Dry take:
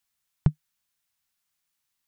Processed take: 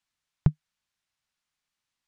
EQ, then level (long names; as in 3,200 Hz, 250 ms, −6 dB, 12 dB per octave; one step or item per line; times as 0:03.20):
high-frequency loss of the air 68 metres
0.0 dB